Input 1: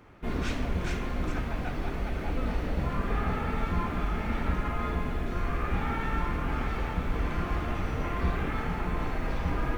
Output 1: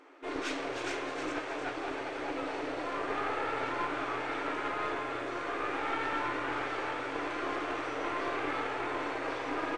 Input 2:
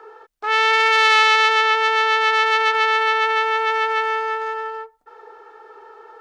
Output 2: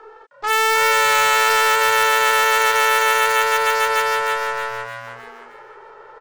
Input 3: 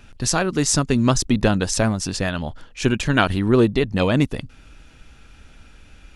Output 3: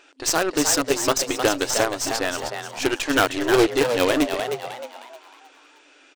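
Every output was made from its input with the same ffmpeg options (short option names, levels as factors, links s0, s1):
-filter_complex "[0:a]afftfilt=real='re*between(b*sr/4096,260,9200)':imag='im*between(b*sr/4096,260,9200)':win_size=4096:overlap=0.75,aeval=exprs='0.299*(cos(1*acos(clip(val(0)/0.299,-1,1)))-cos(1*PI/2))+0.0299*(cos(2*acos(clip(val(0)/0.299,-1,1)))-cos(2*PI/2))+0.00211*(cos(4*acos(clip(val(0)/0.299,-1,1)))-cos(4*PI/2))+0.0531*(cos(6*acos(clip(val(0)/0.299,-1,1)))-cos(6*PI/2))+0.0596*(cos(8*acos(clip(val(0)/0.299,-1,1)))-cos(8*PI/2))':c=same,asplit=6[s0][s1][s2][s3][s4][s5];[s1]adelay=310,afreqshift=120,volume=0.447[s6];[s2]adelay=620,afreqshift=240,volume=0.174[s7];[s3]adelay=930,afreqshift=360,volume=0.0676[s8];[s4]adelay=1240,afreqshift=480,volume=0.0266[s9];[s5]adelay=1550,afreqshift=600,volume=0.0104[s10];[s0][s6][s7][s8][s9][s10]amix=inputs=6:normalize=0"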